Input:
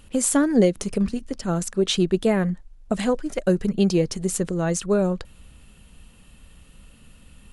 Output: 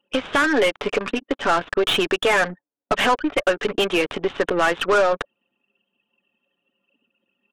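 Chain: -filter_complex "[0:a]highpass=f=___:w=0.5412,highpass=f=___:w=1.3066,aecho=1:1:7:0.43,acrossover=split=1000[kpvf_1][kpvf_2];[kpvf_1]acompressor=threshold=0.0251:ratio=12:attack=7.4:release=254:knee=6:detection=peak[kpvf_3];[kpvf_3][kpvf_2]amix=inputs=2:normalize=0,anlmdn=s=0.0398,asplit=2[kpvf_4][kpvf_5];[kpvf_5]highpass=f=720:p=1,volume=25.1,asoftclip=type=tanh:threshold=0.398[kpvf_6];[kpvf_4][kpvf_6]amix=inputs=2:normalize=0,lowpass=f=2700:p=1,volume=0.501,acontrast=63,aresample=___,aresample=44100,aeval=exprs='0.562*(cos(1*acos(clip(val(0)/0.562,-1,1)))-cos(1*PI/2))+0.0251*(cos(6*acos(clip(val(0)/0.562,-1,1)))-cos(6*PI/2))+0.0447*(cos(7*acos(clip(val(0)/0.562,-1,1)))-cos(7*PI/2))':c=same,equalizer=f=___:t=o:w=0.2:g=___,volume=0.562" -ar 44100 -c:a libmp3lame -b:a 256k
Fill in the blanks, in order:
260, 260, 8000, 2000, -4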